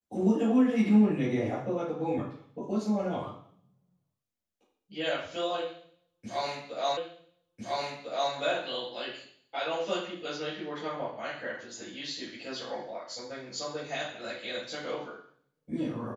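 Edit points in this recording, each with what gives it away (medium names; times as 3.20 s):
6.97 s: repeat of the last 1.35 s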